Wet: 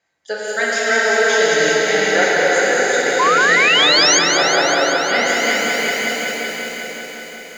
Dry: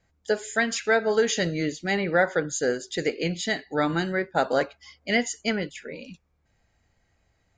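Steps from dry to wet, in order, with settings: weighting filter A; 5.26–5.93 added noise white -47 dBFS; on a send: diffused feedback echo 0.566 s, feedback 42%, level -4 dB; on the sum: non-linear reverb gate 0.45 s flat, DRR -6 dB; 3.19–4.19 painted sound rise 980–6800 Hz -16 dBFS; lo-fi delay 0.186 s, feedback 80%, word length 8-bit, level -7 dB; gain +1 dB

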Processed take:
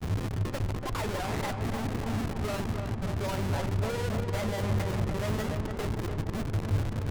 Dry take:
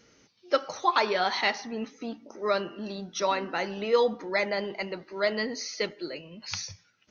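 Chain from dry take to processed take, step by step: delta modulation 16 kbps, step -27.5 dBFS; low shelf 78 Hz -10 dB; added harmonics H 3 -21 dB, 4 -18 dB, 6 -31 dB, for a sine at -12.5 dBFS; Schmitt trigger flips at -33 dBFS; grains 0.1 s, spray 14 ms, pitch spread up and down by 0 st; bell 100 Hz +13.5 dB 0.3 oct; darkening echo 0.291 s, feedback 70%, low-pass 2000 Hz, level -5 dB

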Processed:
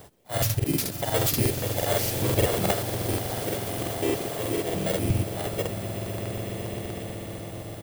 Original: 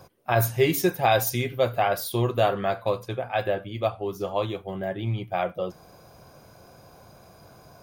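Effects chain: FFT order left unsorted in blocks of 16 samples; auto swell 0.196 s; harmoniser -3 st -1 dB, +3 st -11 dB; swelling echo 0.125 s, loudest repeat 8, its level -14.5 dB; crackling interface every 0.12 s, samples 2048, repeat, from 0.33

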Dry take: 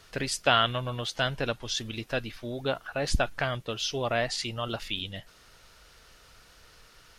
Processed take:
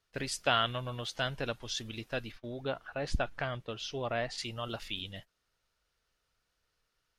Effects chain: gate -42 dBFS, range -19 dB; 2.32–4.38 LPF 3200 Hz 6 dB/oct; gain -5.5 dB

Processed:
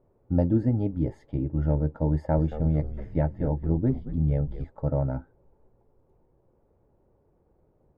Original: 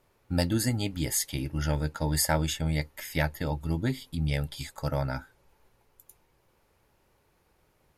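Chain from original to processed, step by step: Chebyshev low-pass 520 Hz, order 2; 2.14–4.65 frequency-shifting echo 0.225 s, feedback 45%, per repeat -91 Hz, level -11 dB; gain +5 dB

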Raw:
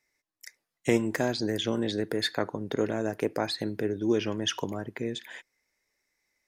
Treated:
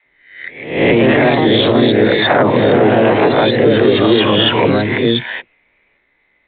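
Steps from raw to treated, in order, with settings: spectral swells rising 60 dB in 0.59 s; dispersion lows, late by 67 ms, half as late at 320 Hz; echoes that change speed 0.204 s, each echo +2 st, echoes 2; maximiser +19 dB; gain -1 dB; G.726 32 kbps 8000 Hz

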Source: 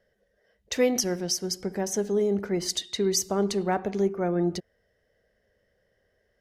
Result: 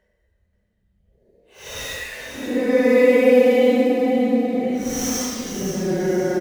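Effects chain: median filter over 9 samples; Paulstretch 12×, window 0.05 s, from 0.57; feedback echo 0.532 s, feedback 41%, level -8.5 dB; gain +5.5 dB

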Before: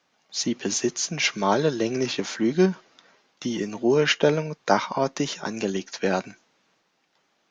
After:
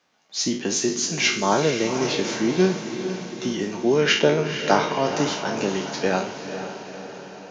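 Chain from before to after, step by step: spectral trails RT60 0.44 s; diffused feedback echo 0.479 s, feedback 59%, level -9 dB

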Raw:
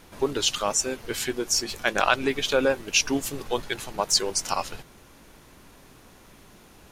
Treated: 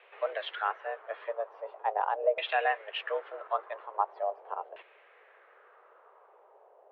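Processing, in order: mistuned SSB +210 Hz 210–3400 Hz; LFO low-pass saw down 0.42 Hz 600–2600 Hz; gain -7.5 dB

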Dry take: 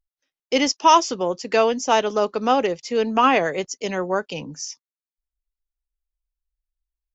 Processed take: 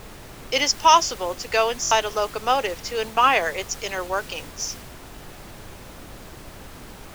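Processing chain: HPF 430 Hz 12 dB/oct; tilt shelf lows -4 dB, about 820 Hz; added noise pink -38 dBFS; stuck buffer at 1.82, samples 1024, times 3; mismatched tape noise reduction decoder only; gain -1 dB

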